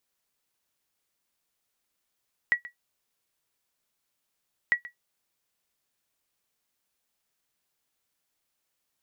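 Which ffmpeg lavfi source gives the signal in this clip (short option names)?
-f lavfi -i "aevalsrc='0.211*(sin(2*PI*1930*mod(t,2.2))*exp(-6.91*mod(t,2.2)/0.12)+0.126*sin(2*PI*1930*max(mod(t,2.2)-0.13,0))*exp(-6.91*max(mod(t,2.2)-0.13,0)/0.12))':d=4.4:s=44100"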